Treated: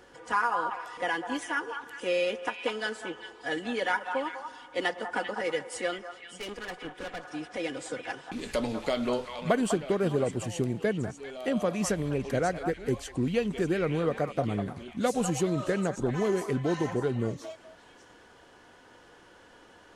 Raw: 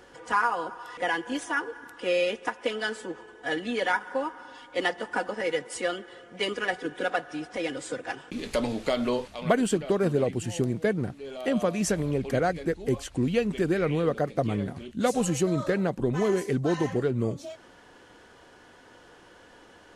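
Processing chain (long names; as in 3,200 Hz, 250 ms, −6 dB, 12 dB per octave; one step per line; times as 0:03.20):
0:05.98–0:07.24: tube saturation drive 31 dB, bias 0.75
echo through a band-pass that steps 198 ms, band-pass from 990 Hz, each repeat 1.4 octaves, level −4 dB
level −2.5 dB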